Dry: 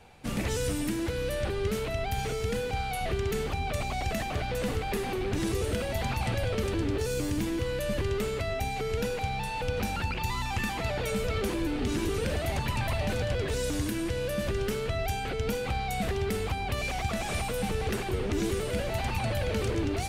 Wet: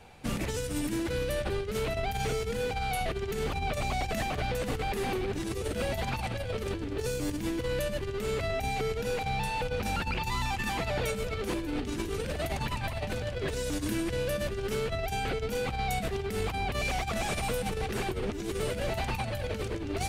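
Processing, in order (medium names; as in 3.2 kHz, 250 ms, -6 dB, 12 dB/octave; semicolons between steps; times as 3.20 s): compressor with a negative ratio -31 dBFS, ratio -0.5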